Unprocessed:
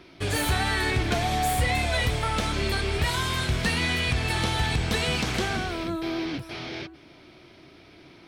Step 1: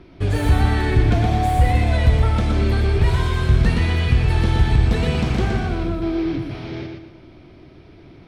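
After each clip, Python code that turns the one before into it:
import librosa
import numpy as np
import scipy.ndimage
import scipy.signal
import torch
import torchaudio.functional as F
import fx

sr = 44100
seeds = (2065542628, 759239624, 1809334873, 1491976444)

y = fx.tilt_eq(x, sr, slope=-3.0)
y = fx.echo_feedback(y, sr, ms=119, feedback_pct=35, wet_db=-4.5)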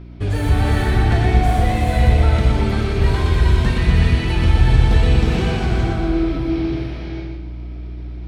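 y = fx.add_hum(x, sr, base_hz=60, snr_db=17)
y = fx.rev_gated(y, sr, seeds[0], gate_ms=440, shape='rising', drr_db=-0.5)
y = y * librosa.db_to_amplitude(-1.5)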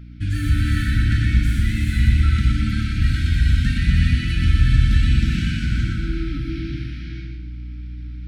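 y = fx.brickwall_bandstop(x, sr, low_hz=320.0, high_hz=1300.0)
y = y * librosa.db_to_amplitude(-2.0)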